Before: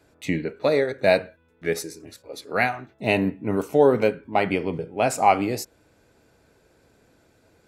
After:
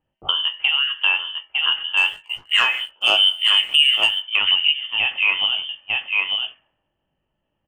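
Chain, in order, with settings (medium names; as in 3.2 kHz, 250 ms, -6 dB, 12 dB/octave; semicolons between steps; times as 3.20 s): high-pass 170 Hz 12 dB/octave; bass shelf 380 Hz +7.5 dB; delay 900 ms -9 dB; 4.47–4.72 s: time-frequency box 240–1800 Hz +12 dB; frequency inversion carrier 3.3 kHz; compression 6:1, threshold -23 dBFS, peak gain reduction 17.5 dB; level-controlled noise filter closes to 320 Hz, open at -25.5 dBFS; 1.97–4.20 s: waveshaping leveller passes 1; doubling 20 ms -8.5 dB; trim +6 dB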